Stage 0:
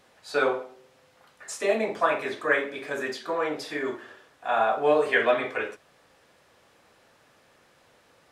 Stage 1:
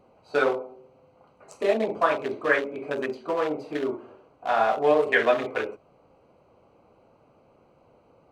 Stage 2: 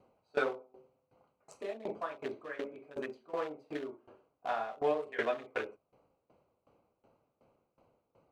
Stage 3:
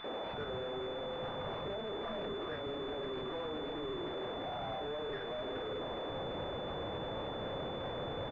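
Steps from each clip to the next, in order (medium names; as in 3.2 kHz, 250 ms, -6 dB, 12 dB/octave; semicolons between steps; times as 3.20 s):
local Wiener filter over 25 samples; in parallel at -1.5 dB: compression, threshold -32 dBFS, peak gain reduction 15 dB
sawtooth tremolo in dB decaying 2.7 Hz, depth 20 dB; trim -6 dB
one-bit comparator; three bands offset in time highs, mids, lows 40/330 ms, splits 240/1200 Hz; class-D stage that switches slowly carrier 3.5 kHz; trim +2.5 dB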